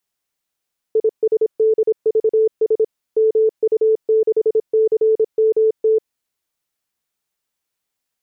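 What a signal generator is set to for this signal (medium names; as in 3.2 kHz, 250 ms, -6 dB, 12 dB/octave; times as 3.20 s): Morse "ISDVS MU6CMT" 26 wpm 439 Hz -11 dBFS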